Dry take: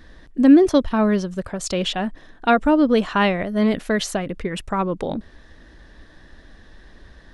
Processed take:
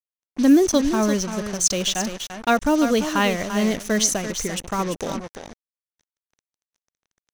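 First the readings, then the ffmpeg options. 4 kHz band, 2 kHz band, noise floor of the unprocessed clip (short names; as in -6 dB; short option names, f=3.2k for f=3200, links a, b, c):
+2.5 dB, -1.0 dB, -48 dBFS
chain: -filter_complex "[0:a]highshelf=f=4.6k:g=11,asplit=2[a][b];[b]aecho=0:1:342:0.335[c];[a][c]amix=inputs=2:normalize=0,acrusher=bits=4:mix=0:aa=0.5,equalizer=f=6.1k:t=o:w=0.24:g=12.5,volume=-3dB"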